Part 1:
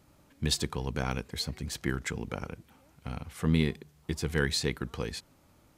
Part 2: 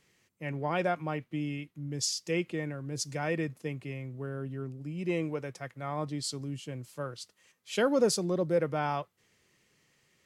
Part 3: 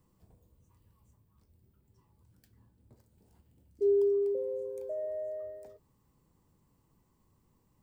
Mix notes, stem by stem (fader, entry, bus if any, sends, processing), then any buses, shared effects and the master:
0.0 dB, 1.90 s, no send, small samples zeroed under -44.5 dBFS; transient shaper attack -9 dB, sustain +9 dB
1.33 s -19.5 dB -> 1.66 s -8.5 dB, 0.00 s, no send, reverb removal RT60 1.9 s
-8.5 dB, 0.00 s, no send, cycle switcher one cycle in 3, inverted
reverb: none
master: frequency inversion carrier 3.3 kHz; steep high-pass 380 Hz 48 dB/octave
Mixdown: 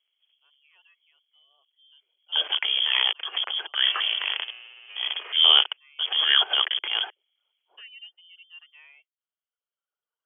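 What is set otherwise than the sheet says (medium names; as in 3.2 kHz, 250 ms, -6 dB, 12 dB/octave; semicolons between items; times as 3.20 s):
stem 1 0.0 dB -> +8.5 dB; stem 2 -19.5 dB -> -30.5 dB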